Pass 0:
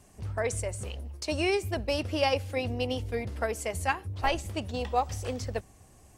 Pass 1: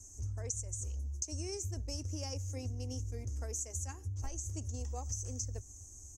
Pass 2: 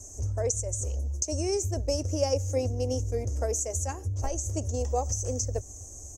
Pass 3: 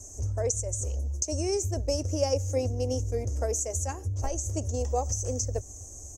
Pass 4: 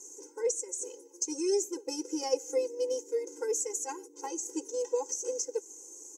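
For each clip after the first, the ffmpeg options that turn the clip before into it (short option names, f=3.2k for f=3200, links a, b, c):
-af "firequalizer=gain_entry='entry(100,0);entry(160,-28);entry(260,-8);entry(580,-19);entry(3900,-25);entry(6300,15);entry(9300,-7)':delay=0.05:min_phase=1,acompressor=threshold=-40dB:ratio=6,volume=4dB"
-af "equalizer=f=570:w=1.4:g=13.5,volume=8dB"
-af anull
-af "afftfilt=real='re*eq(mod(floor(b*sr/1024/270),2),1)':imag='im*eq(mod(floor(b*sr/1024/270),2),1)':win_size=1024:overlap=0.75,volume=1dB"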